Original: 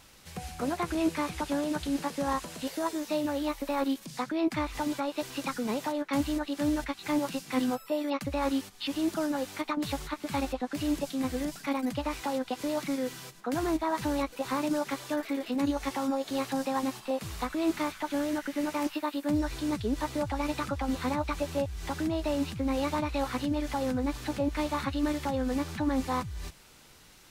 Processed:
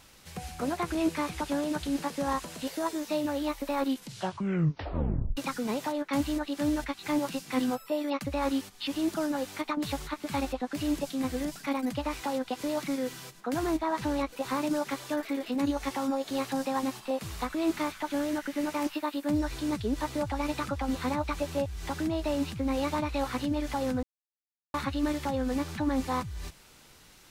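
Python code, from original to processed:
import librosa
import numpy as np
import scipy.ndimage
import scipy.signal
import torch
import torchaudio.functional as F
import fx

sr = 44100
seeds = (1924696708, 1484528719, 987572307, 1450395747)

y = fx.high_shelf(x, sr, hz=8000.0, db=-7.0, at=(13.79, 14.29))
y = fx.edit(y, sr, fx.tape_stop(start_s=3.89, length_s=1.48),
    fx.silence(start_s=24.03, length_s=0.71), tone=tone)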